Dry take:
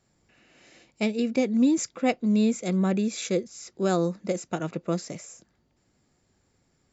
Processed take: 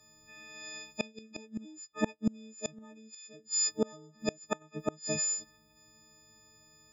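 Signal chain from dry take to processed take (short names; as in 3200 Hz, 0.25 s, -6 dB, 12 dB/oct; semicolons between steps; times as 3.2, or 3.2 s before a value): frequency quantiser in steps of 6 st; flipped gate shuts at -18 dBFS, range -30 dB; gain +1.5 dB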